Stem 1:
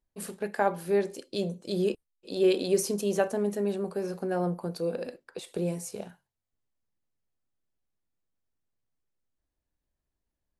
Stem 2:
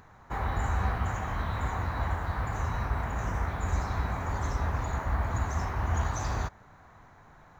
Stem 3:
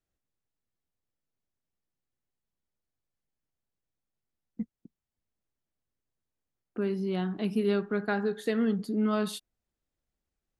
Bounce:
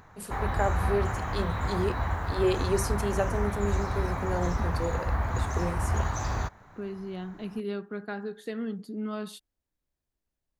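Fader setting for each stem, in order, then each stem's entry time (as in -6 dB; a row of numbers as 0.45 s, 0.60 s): -2.5 dB, +1.0 dB, -6.5 dB; 0.00 s, 0.00 s, 0.00 s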